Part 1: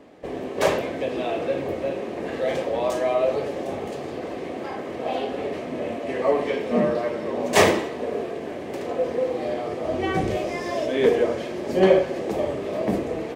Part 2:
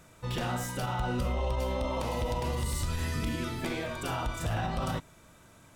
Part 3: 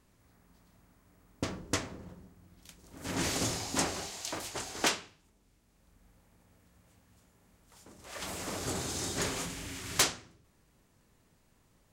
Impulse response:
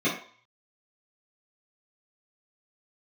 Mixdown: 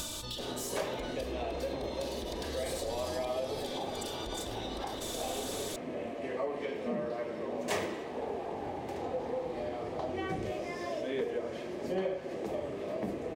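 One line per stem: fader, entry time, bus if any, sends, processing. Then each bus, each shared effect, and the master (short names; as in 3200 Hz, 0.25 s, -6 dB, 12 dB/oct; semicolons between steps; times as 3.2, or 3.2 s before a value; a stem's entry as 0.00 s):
-9.0 dB, 0.15 s, no bus, no send, dry
-12.0 dB, 0.00 s, bus A, no send, comb 3.4 ms, depth 71%; fast leveller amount 100%
-6.0 dB, 0.00 s, bus A, no send, synth low-pass 820 Hz, resonance Q 7.9
bus A: 0.0 dB, resonant high shelf 2800 Hz +9 dB, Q 3; compressor 4:1, threshold -38 dBFS, peak gain reduction 11.5 dB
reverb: off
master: compressor 3:1, threshold -32 dBFS, peak gain reduction 9.5 dB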